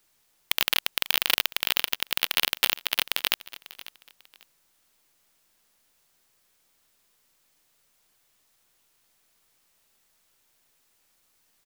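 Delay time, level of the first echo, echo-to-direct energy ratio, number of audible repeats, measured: 0.545 s, -18.0 dB, -17.5 dB, 2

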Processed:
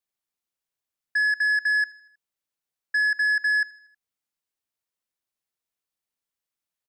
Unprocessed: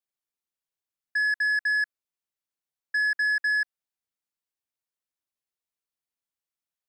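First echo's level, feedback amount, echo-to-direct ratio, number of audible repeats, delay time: -21.0 dB, 52%, -19.5 dB, 3, 79 ms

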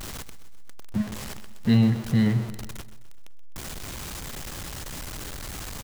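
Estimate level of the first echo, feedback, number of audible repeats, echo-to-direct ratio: -14.5 dB, 54%, 4, -13.0 dB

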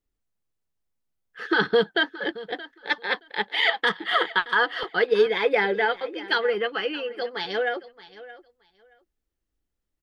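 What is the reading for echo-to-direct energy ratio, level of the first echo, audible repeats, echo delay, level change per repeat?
-17.5 dB, -17.5 dB, 2, 0.623 s, -15.5 dB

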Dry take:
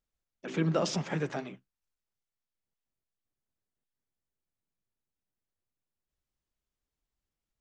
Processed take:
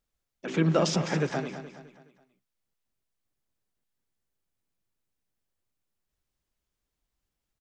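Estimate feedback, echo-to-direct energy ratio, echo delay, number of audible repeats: 42%, -10.0 dB, 0.21 s, 4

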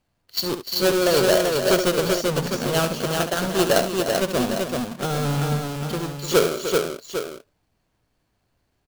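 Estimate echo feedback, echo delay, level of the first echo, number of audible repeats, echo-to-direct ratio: no steady repeat, 69 ms, -10.0 dB, 4, -1.5 dB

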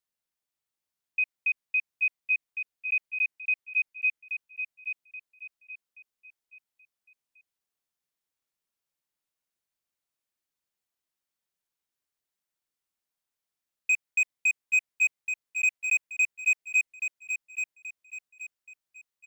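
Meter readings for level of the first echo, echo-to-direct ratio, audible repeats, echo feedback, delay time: -7.0 dB, -6.5 dB, 4, 35%, 0.828 s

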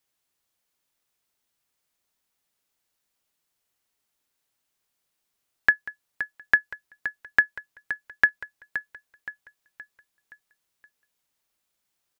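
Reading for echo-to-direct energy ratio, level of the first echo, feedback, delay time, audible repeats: -10.5 dB, -11.5 dB, 46%, 0.521 s, 4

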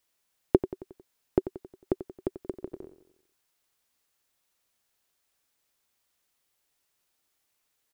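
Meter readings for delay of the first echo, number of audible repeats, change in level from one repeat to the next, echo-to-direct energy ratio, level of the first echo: 90 ms, 4, -6.0 dB, -11.5 dB, -13.0 dB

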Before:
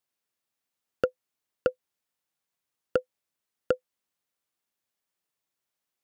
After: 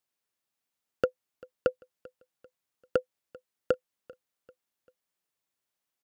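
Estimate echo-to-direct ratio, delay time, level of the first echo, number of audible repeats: -22.0 dB, 0.392 s, -23.0 dB, 2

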